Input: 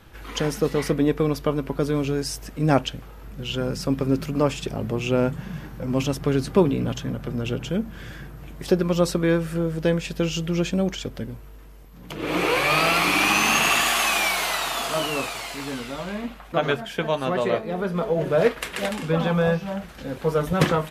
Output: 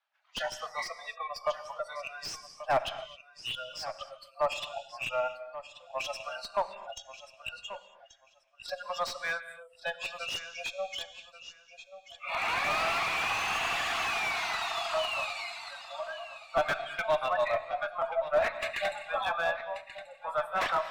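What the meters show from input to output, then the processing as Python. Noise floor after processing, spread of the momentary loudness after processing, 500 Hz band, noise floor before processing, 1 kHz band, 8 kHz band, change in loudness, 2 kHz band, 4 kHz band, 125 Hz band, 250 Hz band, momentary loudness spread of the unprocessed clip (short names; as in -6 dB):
-61 dBFS, 15 LU, -10.0 dB, -42 dBFS, -5.0 dB, -14.0 dB, -9.5 dB, -7.0 dB, -8.0 dB, -28.5 dB, -30.0 dB, 14 LU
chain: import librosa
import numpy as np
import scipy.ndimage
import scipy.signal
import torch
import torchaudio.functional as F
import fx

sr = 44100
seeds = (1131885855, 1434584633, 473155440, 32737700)

y = fx.noise_reduce_blind(x, sr, reduce_db=29)
y = scipy.signal.sosfilt(scipy.signal.butter(16, 590.0, 'highpass', fs=sr, output='sos'), y)
y = fx.dereverb_blind(y, sr, rt60_s=0.5)
y = fx.high_shelf(y, sr, hz=3500.0, db=7.5)
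y = fx.rider(y, sr, range_db=4, speed_s=2.0)
y = fx.tube_stage(y, sr, drive_db=15.0, bias=0.25)
y = fx.air_absorb(y, sr, metres=160.0)
y = fx.echo_feedback(y, sr, ms=1134, feedback_pct=17, wet_db=-14)
y = fx.rev_gated(y, sr, seeds[0], gate_ms=290, shape='flat', drr_db=11.5)
y = fx.slew_limit(y, sr, full_power_hz=110.0)
y = F.gain(torch.from_numpy(y), -2.5).numpy()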